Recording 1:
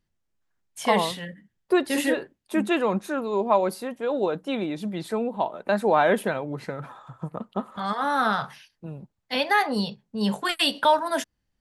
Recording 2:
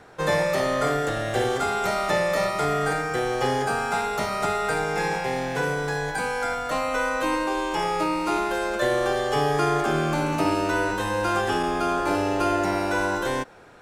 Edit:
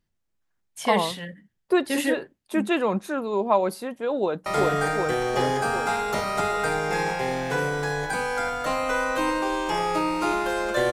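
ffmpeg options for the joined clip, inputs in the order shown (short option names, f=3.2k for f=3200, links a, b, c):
-filter_complex "[0:a]apad=whole_dur=10.92,atrim=end=10.92,atrim=end=4.462[a];[1:a]atrim=start=2.508:end=8.97[b];[a][b]acrossfade=d=0.004:c1=hsin:c2=hsin,asplit=2[c][d];[d]afade=t=in:st=4.19:d=0.01,afade=t=out:st=4.46:d=0.01,aecho=0:1:380|760|1140|1520|1900|2280|2660|3040|3420|3800|4180|4560:0.944061|0.660843|0.46259|0.323813|0.226669|0.158668|0.111068|0.0777475|0.0544232|0.0380963|0.0266674|0.0186672[e];[c][e]amix=inputs=2:normalize=0"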